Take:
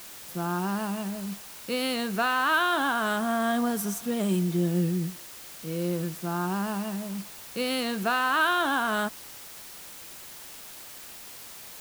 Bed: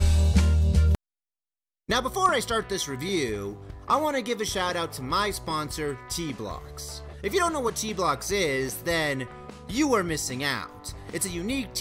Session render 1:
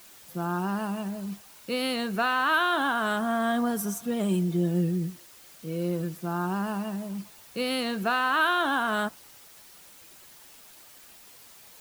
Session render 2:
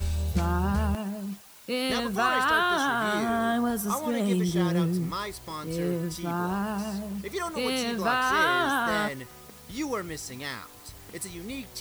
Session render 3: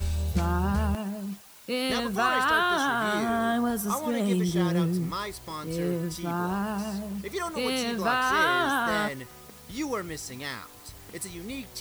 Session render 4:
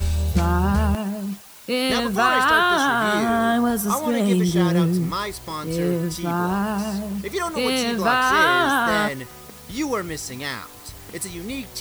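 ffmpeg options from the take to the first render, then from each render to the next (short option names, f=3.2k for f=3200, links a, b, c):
-af "afftdn=nr=8:nf=-44"
-filter_complex "[1:a]volume=-8dB[a];[0:a][a]amix=inputs=2:normalize=0"
-af anull
-af "volume=6.5dB"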